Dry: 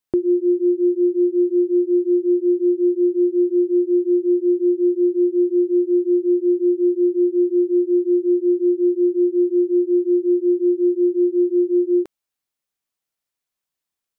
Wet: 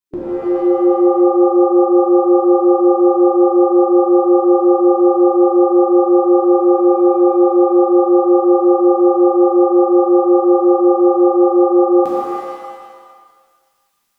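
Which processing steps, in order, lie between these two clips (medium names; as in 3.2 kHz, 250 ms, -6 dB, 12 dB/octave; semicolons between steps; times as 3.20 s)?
level rider gain up to 16 dB; dynamic bell 200 Hz, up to +7 dB, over -23 dBFS, Q 0.83; harmonic-percussive split harmonic -16 dB; 6.34–7.33 s: transient shaper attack -2 dB, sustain +3 dB; pitch-shifted reverb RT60 1.5 s, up +7 st, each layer -2 dB, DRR -6.5 dB; trim -2.5 dB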